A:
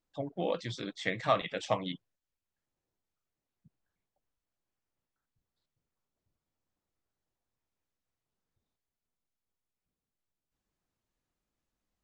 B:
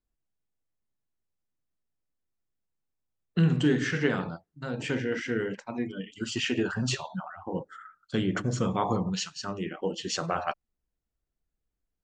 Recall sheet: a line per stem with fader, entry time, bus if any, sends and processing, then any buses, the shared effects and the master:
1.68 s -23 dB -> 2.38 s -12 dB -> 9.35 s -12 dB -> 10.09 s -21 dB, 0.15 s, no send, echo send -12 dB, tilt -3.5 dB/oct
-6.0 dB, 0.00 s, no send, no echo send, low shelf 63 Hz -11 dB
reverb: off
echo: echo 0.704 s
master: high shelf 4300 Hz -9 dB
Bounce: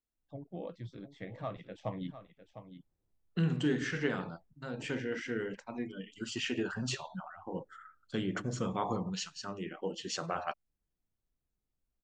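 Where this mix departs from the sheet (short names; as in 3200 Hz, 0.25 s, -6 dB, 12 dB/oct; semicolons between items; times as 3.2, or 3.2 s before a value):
stem A -23.0 dB -> -14.0 dB; master: missing high shelf 4300 Hz -9 dB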